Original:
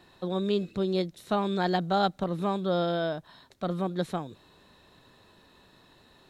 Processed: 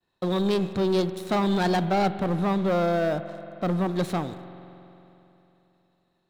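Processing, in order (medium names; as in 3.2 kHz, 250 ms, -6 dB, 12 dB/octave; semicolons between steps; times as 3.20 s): expander -50 dBFS; 1.85–3.89 s: treble shelf 2.7 kHz -8.5 dB; waveshaping leveller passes 3; spring tank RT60 3.2 s, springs 45 ms, chirp 30 ms, DRR 11.5 dB; trim -3.5 dB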